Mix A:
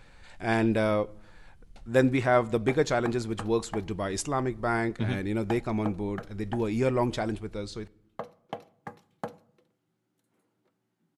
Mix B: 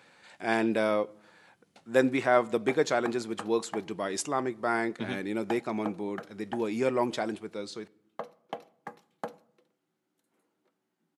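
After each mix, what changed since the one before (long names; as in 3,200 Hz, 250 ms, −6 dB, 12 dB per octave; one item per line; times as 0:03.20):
master: add Bessel high-pass filter 240 Hz, order 4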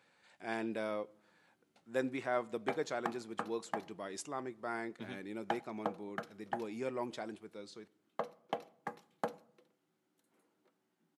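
speech −11.5 dB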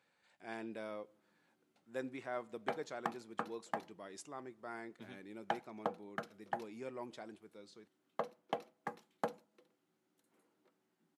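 speech −7.0 dB
background: send off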